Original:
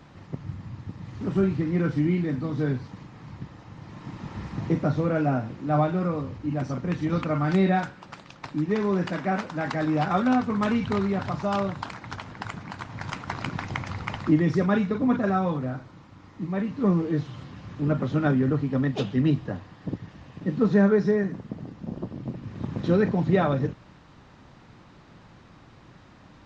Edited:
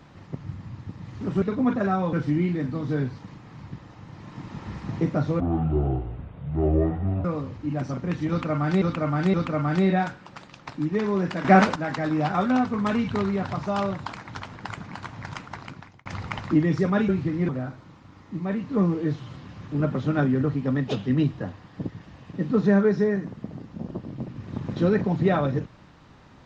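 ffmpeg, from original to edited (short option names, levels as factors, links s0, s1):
-filter_complex "[0:a]asplit=12[s0][s1][s2][s3][s4][s5][s6][s7][s8][s9][s10][s11];[s0]atrim=end=1.422[s12];[s1]atrim=start=14.848:end=15.562[s13];[s2]atrim=start=1.818:end=5.094[s14];[s3]atrim=start=5.09:end=6.05,asetpts=PTS-STARTPTS,asetrate=22932,aresample=44100,atrim=end_sample=81415,asetpts=PTS-STARTPTS[s15];[s4]atrim=start=6.046:end=7.622[s16];[s5]atrim=start=7.098:end=7.622[s17];[s6]atrim=start=7.098:end=9.212[s18];[s7]atrim=start=9.208:end=9.522,asetpts=PTS-STARTPTS,volume=3.55[s19];[s8]atrim=start=9.518:end=13.82,asetpts=PTS-STARTPTS,afade=t=out:st=3.352:d=0.95[s20];[s9]atrim=start=13.82:end=14.852,asetpts=PTS-STARTPTS,afade=t=in:d=0.004:c=hsin[s21];[s10]atrim=start=1.418:end=1.822[s22];[s11]atrim=start=15.558[s23];[s12][s13]acrossfade=d=0.004:c1=hsin:c2=hsin[s24];[s24][s14]acrossfade=d=0.004:c1=hsin:c2=hsin[s25];[s25][s15]acrossfade=d=0.004:c1=hsin:c2=hsin[s26];[s26][s16]acrossfade=d=0.004:c1=hsin:c2=hsin[s27];[s27][s17]acrossfade=d=0.004:c1=hsin:c2=hsin[s28];[s28][s18]acrossfade=d=0.004:c1=hsin:c2=hsin[s29];[s29][s19]acrossfade=d=0.004:c1=hsin:c2=hsin[s30];[s20][s21]concat=n=2:v=0:a=1[s31];[s30][s31]acrossfade=d=0.004:c1=hsin:c2=hsin[s32];[s32][s22]acrossfade=d=0.004:c1=hsin:c2=hsin[s33];[s33][s23]acrossfade=d=0.004:c1=hsin:c2=hsin"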